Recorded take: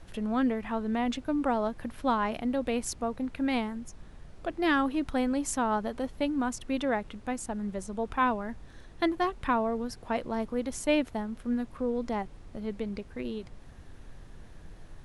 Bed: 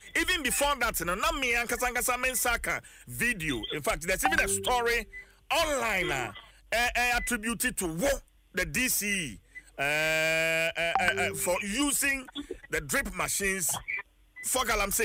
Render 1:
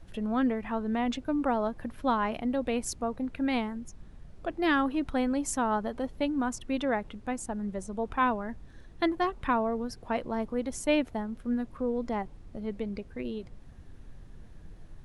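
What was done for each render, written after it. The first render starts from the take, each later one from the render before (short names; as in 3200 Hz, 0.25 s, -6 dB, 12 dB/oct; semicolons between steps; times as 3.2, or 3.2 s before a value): denoiser 6 dB, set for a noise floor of -50 dBFS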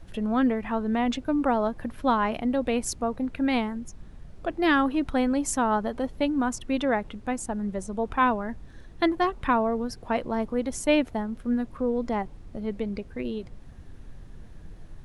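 gain +4 dB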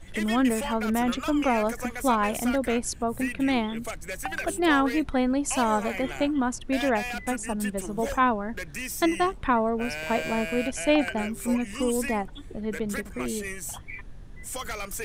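add bed -7 dB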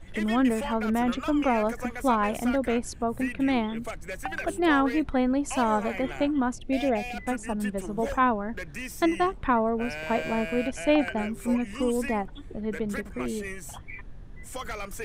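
6.54–7.17 spectral gain 830–2000 Hz -11 dB; high shelf 3800 Hz -9 dB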